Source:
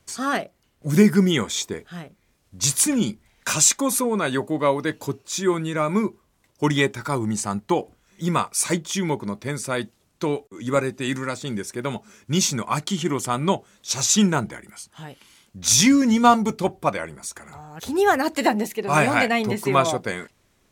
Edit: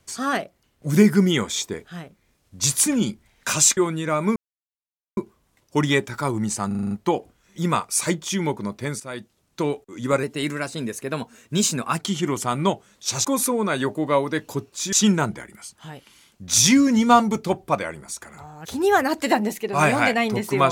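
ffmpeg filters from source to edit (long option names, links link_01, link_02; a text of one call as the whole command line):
ffmpeg -i in.wav -filter_complex "[0:a]asplit=14[link_01][link_02][link_03][link_04][link_05][link_06][link_07][link_08][link_09][link_10][link_11][link_12][link_13][link_14];[link_01]atrim=end=3.772[link_15];[link_02]atrim=start=5.448:end=6.04,asetpts=PTS-STARTPTS,afade=type=out:start_time=0.588:duration=0.004:curve=hsin,apad=pad_dur=0.81[link_16];[link_03]atrim=start=6.04:end=7.582,asetpts=PTS-STARTPTS,afade=type=in:duration=0.004:curve=hsin[link_17];[link_04]atrim=start=7.538:end=7.582[link_18];[link_05]atrim=start=7.538:end=7.582[link_19];[link_06]atrim=start=7.538:end=7.582[link_20];[link_07]atrim=start=7.538:end=7.582[link_21];[link_08]atrim=start=7.538:end=7.582[link_22];[link_09]atrim=start=7.538:end=9.63,asetpts=PTS-STARTPTS,afade=type=out:start_time=2.088:duration=0.004:curve=hsin:silence=0.251189[link_23];[link_10]atrim=start=9.63:end=10.864,asetpts=PTS-STARTPTS,afade=type=in:duration=0.61:silence=0.251189[link_24];[link_11]atrim=start=10.86:end=12.82,asetpts=PTS-STARTPTS,asetrate=48951,aresample=44100,atrim=end_sample=77870,asetpts=PTS-STARTPTS[link_25];[link_12]atrim=start=12.816:end=14.072[link_26];[link_13]atrim=start=3.768:end=5.452[link_27];[link_14]atrim=start=14.068[link_28];[link_16][link_17]concat=n=2:v=0:a=1[link_29];[link_15][link_29]acrossfade=duration=0.004:curve1=hsin:curve2=hsin[link_30];[link_30][link_18]acrossfade=duration=0.004:curve1=hsin:curve2=hsin[link_31];[link_31][link_19]acrossfade=duration=0.004:curve1=hsin:curve2=hsin[link_32];[link_32][link_20]acrossfade=duration=0.004:curve1=hsin:curve2=hsin[link_33];[link_33][link_21]acrossfade=duration=0.004:curve1=hsin:curve2=hsin[link_34];[link_34][link_22]acrossfade=duration=0.004:curve1=hsin:curve2=hsin[link_35];[link_23][link_24]concat=n=2:v=0:a=1[link_36];[link_35][link_36]acrossfade=duration=0.004:curve1=hsin:curve2=hsin[link_37];[link_37][link_25]acrossfade=duration=0.004:curve1=hsin:curve2=hsin[link_38];[link_38][link_26]acrossfade=duration=0.004:curve1=hsin:curve2=hsin[link_39];[link_39][link_27]acrossfade=duration=0.004:curve1=hsin:curve2=hsin[link_40];[link_40][link_28]acrossfade=duration=0.004:curve1=hsin:curve2=hsin" out.wav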